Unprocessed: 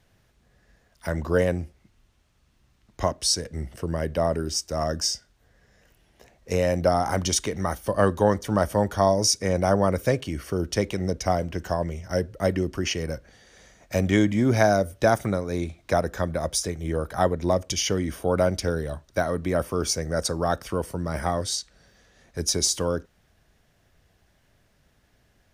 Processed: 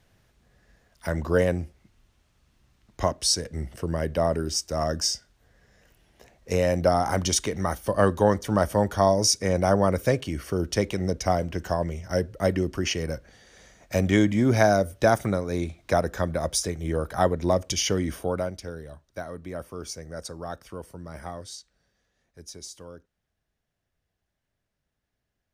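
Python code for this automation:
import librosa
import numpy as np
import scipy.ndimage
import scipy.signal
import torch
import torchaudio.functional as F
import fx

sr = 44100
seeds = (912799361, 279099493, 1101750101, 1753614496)

y = fx.gain(x, sr, db=fx.line((18.16, 0.0), (18.56, -11.0), (21.26, -11.0), (22.49, -18.0)))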